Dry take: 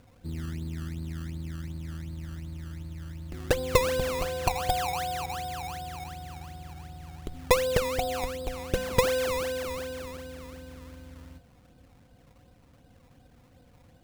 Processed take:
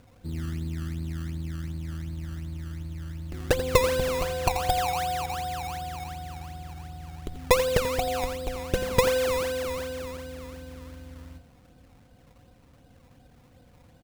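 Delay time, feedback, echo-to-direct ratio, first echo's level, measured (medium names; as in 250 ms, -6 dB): 86 ms, 22%, -12.5 dB, -12.5 dB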